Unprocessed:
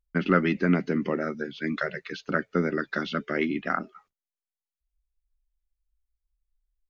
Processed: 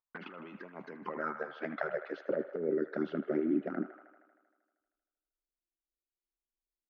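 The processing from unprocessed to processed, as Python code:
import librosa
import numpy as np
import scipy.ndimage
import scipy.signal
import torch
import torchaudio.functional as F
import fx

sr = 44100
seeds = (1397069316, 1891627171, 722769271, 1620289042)

y = fx.env_flanger(x, sr, rest_ms=8.8, full_db=-21.0)
y = fx.over_compress(y, sr, threshold_db=-32.0, ratio=-1.0)
y = fx.filter_sweep_bandpass(y, sr, from_hz=1000.0, to_hz=340.0, start_s=0.93, end_s=3.24, q=3.1)
y = fx.echo_wet_bandpass(y, sr, ms=78, feedback_pct=71, hz=1300.0, wet_db=-9.5)
y = F.gain(torch.from_numpy(y), 6.5).numpy()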